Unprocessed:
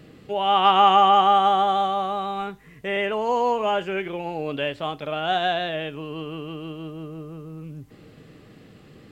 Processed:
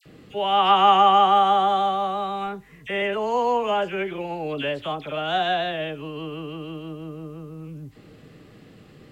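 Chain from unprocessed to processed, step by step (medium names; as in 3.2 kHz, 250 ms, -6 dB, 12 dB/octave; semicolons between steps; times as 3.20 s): phase dispersion lows, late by 57 ms, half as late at 1.7 kHz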